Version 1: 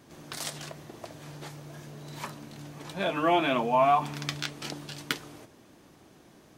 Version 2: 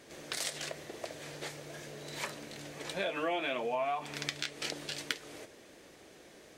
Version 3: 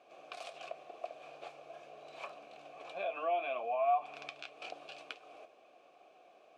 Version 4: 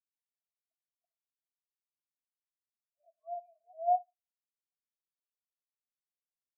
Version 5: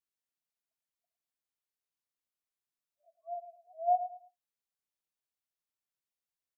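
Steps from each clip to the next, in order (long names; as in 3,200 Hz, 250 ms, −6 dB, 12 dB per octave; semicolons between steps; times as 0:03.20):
octave-band graphic EQ 125/250/500/1,000/2,000/4,000/8,000 Hz −6/−3/+9/−4/+8/+4/+6 dB; downward compressor 4 to 1, threshold −30 dBFS, peak gain reduction 12.5 dB; level −2.5 dB
formant filter a; level +6 dB
comb and all-pass reverb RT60 1.1 s, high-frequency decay 0.95×, pre-delay 35 ms, DRR 7.5 dB; every bin expanded away from the loudest bin 4 to 1
repeating echo 108 ms, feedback 27%, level −11 dB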